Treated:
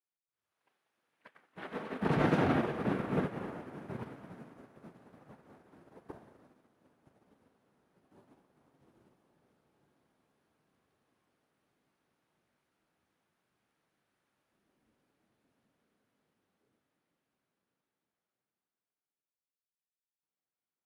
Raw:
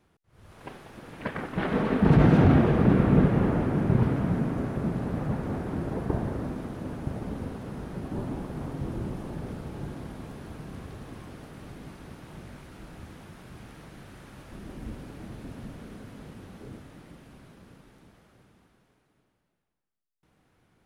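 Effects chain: HPF 1300 Hz 6 dB/oct, from 1.55 s 530 Hz; upward expander 2.5:1, over -43 dBFS

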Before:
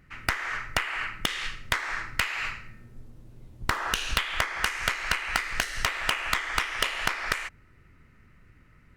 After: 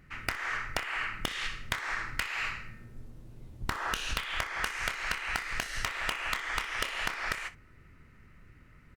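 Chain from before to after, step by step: compressor, threshold -29 dBFS, peak gain reduction 9.5 dB; on a send: early reflections 27 ms -13 dB, 62 ms -18 dB

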